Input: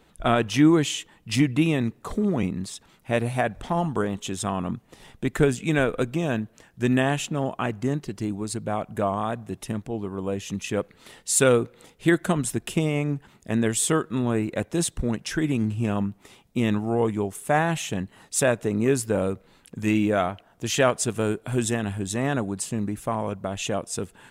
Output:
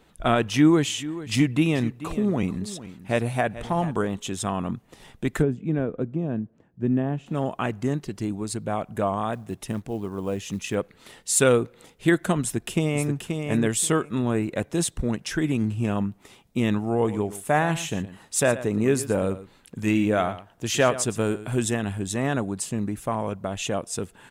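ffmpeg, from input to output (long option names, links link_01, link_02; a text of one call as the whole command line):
ffmpeg -i in.wav -filter_complex "[0:a]asplit=3[link_01][link_02][link_03];[link_01]afade=type=out:start_time=0.87:duration=0.02[link_04];[link_02]aecho=1:1:436:0.178,afade=type=in:start_time=0.87:duration=0.02,afade=type=out:start_time=4.05:duration=0.02[link_05];[link_03]afade=type=in:start_time=4.05:duration=0.02[link_06];[link_04][link_05][link_06]amix=inputs=3:normalize=0,asplit=3[link_07][link_08][link_09];[link_07]afade=type=out:start_time=5.41:duration=0.02[link_10];[link_08]bandpass=frequency=190:width_type=q:width=0.67,afade=type=in:start_time=5.41:duration=0.02,afade=type=out:start_time=7.26:duration=0.02[link_11];[link_09]afade=type=in:start_time=7.26:duration=0.02[link_12];[link_10][link_11][link_12]amix=inputs=3:normalize=0,asettb=1/sr,asplit=3[link_13][link_14][link_15];[link_13]atrim=end=9.334[link_16];[link_14]atrim=start=9.33:end=10.75,asetpts=PTS-STARTPTS,afade=type=in:duration=0.004:curve=qsin,afade=type=out:start_time=1.416:duration=0.004:curve=qsin,acrusher=bits=8:mode=log:mix=0:aa=0.000001[link_17];[link_15]atrim=start=10.746[link_18];[link_16][link_17]acrossfade=duration=0.004:curve1=hsin:curve2=qsin[link_19];[link_19][link_18]acrossfade=duration=0.004:curve1=qsin:curve2=hsin,asplit=2[link_20][link_21];[link_21]afade=type=in:start_time=12.41:duration=0.01,afade=type=out:start_time=13.14:duration=0.01,aecho=0:1:530|1060|1590:0.530884|0.0796327|0.0119449[link_22];[link_20][link_22]amix=inputs=2:normalize=0,asettb=1/sr,asplit=3[link_23][link_24][link_25];[link_23]atrim=end=16.934[link_26];[link_24]atrim=start=16.93:end=21.48,asetpts=PTS-STARTPTS,afade=type=in:duration=0.004:curve=qsin,afade=type=out:start_time=4.546:duration=0.004:curve=qsin,aecho=1:1:115:0.188,atrim=end_sample=200655[link_27];[link_25]atrim=start=21.476[link_28];[link_26][link_27]acrossfade=duration=0.004:curve1=hsin:curve2=qsin[link_29];[link_29][link_28]acrossfade=duration=0.004:curve1=qsin:curve2=hsin" out.wav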